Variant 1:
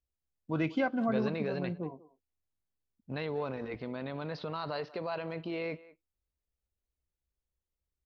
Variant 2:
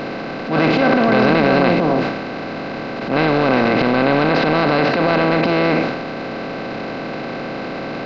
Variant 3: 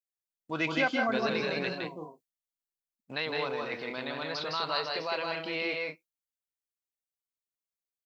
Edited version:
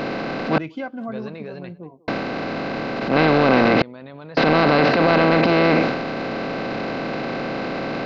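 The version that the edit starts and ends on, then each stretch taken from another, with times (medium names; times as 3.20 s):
2
0.58–2.08 s: from 1
3.82–4.37 s: from 1
not used: 3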